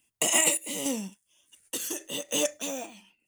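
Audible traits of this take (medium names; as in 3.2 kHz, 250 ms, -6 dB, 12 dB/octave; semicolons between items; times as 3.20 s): random-step tremolo, depth 70%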